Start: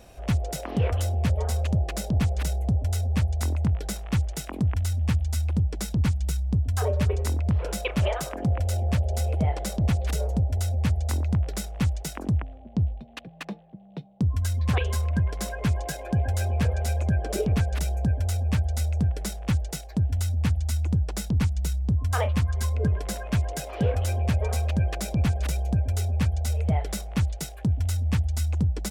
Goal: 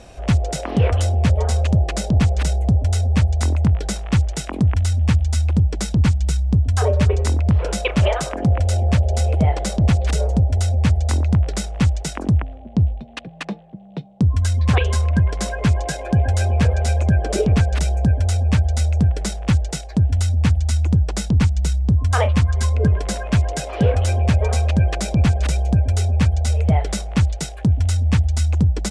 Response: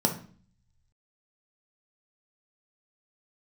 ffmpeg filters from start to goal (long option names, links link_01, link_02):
-af "lowpass=frequency=9200:width=0.5412,lowpass=frequency=9200:width=1.3066,volume=7.5dB"